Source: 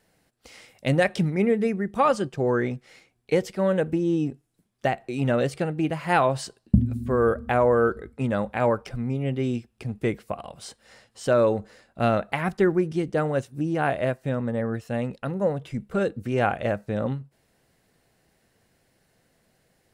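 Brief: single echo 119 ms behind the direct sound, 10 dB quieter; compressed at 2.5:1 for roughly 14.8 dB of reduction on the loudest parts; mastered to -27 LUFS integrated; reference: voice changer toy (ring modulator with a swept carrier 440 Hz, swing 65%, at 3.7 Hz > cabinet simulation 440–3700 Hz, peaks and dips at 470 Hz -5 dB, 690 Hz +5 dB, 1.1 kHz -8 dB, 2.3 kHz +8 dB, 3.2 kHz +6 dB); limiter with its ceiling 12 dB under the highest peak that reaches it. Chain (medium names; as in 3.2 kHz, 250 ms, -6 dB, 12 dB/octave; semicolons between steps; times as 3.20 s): compression 2.5:1, threshold -38 dBFS; peak limiter -31 dBFS; delay 119 ms -10 dB; ring modulator with a swept carrier 440 Hz, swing 65%, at 3.7 Hz; cabinet simulation 440–3700 Hz, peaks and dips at 470 Hz -5 dB, 690 Hz +5 dB, 1.1 kHz -8 dB, 2.3 kHz +8 dB, 3.2 kHz +6 dB; trim +19 dB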